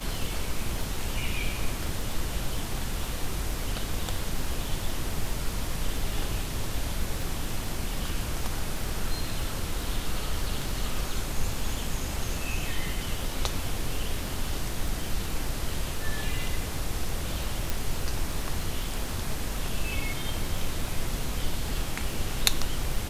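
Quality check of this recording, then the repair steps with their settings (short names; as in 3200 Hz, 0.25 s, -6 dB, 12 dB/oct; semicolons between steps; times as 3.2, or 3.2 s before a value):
crackle 31/s -32 dBFS
17.7 pop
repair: de-click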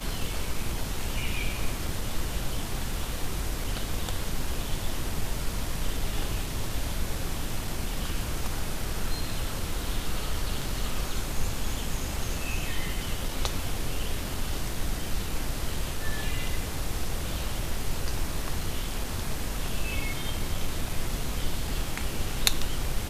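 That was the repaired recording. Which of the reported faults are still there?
17.7 pop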